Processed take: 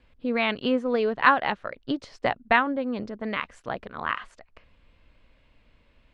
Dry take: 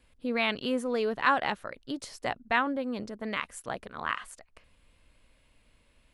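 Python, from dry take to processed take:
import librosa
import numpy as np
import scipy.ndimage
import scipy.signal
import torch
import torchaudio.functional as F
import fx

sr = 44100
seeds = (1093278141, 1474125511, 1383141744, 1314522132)

y = fx.transient(x, sr, attack_db=5, sustain_db=-3, at=(0.53, 2.77), fade=0.02)
y = fx.air_absorb(y, sr, metres=170.0)
y = F.gain(torch.from_numpy(y), 4.5).numpy()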